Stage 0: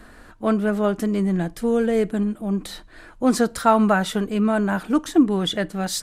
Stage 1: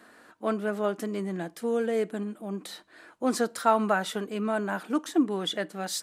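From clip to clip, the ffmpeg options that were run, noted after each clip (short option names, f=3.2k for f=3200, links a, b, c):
-af "highpass=270,volume=-5.5dB"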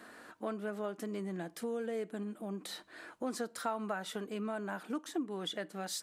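-af "acompressor=threshold=-41dB:ratio=2.5,volume=1dB"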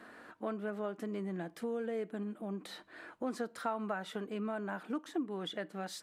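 -af "bass=f=250:g=1,treble=f=4k:g=-9"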